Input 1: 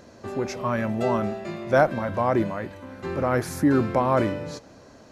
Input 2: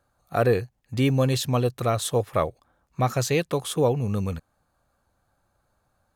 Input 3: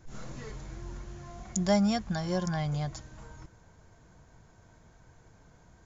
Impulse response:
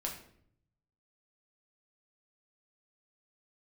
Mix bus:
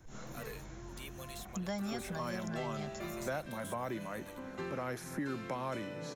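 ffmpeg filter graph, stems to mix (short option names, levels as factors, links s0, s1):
-filter_complex "[0:a]highpass=f=130:w=0.5412,highpass=f=130:w=1.3066,adelay=1550,volume=0.596[s0];[1:a]aderivative,asoftclip=type=tanh:threshold=0.0335,volume=0.501[s1];[2:a]volume=0.794[s2];[s0][s1][s2]amix=inputs=3:normalize=0,bandreject=f=4700:w=11,acrossover=split=150|1300|2600[s3][s4][s5][s6];[s3]acompressor=threshold=0.00355:ratio=4[s7];[s4]acompressor=threshold=0.01:ratio=4[s8];[s5]acompressor=threshold=0.00398:ratio=4[s9];[s6]acompressor=threshold=0.00316:ratio=4[s10];[s7][s8][s9][s10]amix=inputs=4:normalize=0"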